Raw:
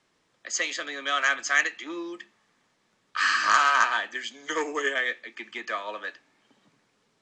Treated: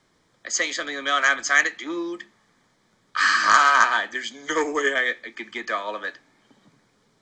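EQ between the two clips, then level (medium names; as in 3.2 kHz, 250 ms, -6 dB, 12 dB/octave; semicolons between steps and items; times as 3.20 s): bass shelf 180 Hz +8 dB; band-stop 2.7 kHz, Q 5.2; +4.5 dB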